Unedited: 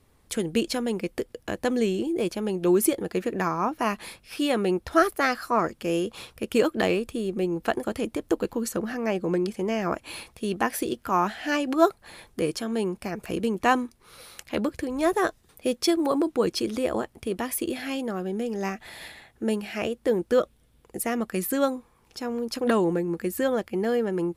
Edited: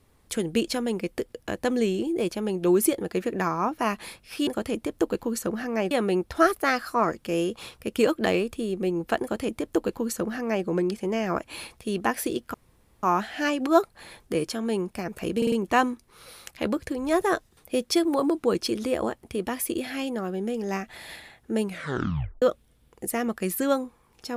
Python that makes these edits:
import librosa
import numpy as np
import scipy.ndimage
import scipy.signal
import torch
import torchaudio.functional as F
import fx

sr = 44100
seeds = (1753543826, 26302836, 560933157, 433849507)

y = fx.edit(x, sr, fx.duplicate(start_s=7.77, length_s=1.44, to_s=4.47),
    fx.insert_room_tone(at_s=11.1, length_s=0.49),
    fx.stutter(start_s=13.44, slice_s=0.05, count=4),
    fx.tape_stop(start_s=19.56, length_s=0.78), tone=tone)